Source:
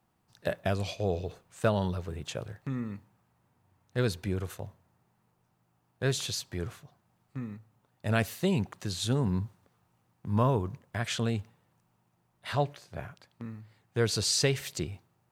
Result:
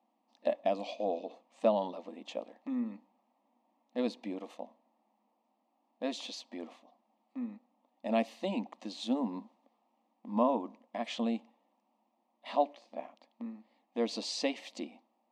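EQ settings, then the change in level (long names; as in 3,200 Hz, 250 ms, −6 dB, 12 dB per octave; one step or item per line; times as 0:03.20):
linear-phase brick-wall high-pass 210 Hz
Bessel low-pass filter 2,200 Hz, order 2
phaser with its sweep stopped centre 400 Hz, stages 6
+3.0 dB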